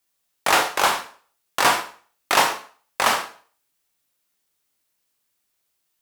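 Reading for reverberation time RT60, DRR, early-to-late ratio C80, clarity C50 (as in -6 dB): 0.45 s, 3.5 dB, 15.0 dB, 10.5 dB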